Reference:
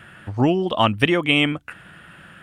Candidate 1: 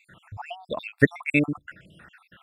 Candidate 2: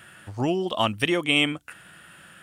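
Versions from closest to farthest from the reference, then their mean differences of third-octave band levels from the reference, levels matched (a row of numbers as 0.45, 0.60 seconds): 2, 1; 3.5, 10.0 decibels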